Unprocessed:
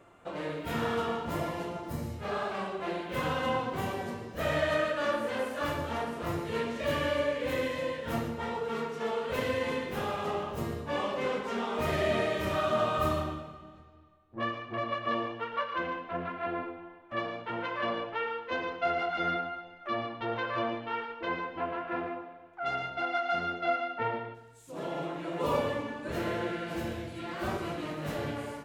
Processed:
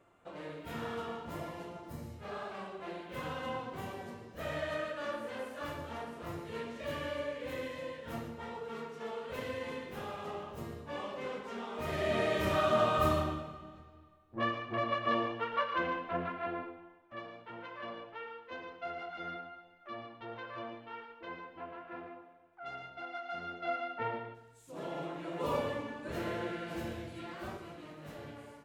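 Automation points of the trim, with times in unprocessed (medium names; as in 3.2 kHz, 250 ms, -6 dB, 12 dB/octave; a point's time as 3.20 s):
11.76 s -8.5 dB
12.37 s 0 dB
16.15 s 0 dB
17.20 s -11.5 dB
23.27 s -11.5 dB
23.87 s -4.5 dB
27.19 s -4.5 dB
27.66 s -12.5 dB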